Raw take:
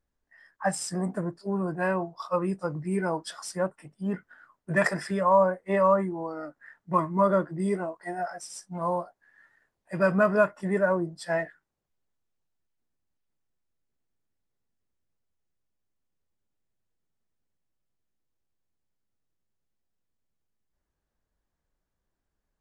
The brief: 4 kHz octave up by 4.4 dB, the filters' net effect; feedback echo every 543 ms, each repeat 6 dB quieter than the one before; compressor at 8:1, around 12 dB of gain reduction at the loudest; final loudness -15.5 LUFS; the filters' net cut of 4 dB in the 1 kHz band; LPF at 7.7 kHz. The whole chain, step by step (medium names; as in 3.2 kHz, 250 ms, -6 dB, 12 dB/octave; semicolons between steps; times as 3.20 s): low-pass 7.7 kHz; peaking EQ 1 kHz -5 dB; peaking EQ 4 kHz +7 dB; compression 8:1, threshold -31 dBFS; feedback delay 543 ms, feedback 50%, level -6 dB; trim +20.5 dB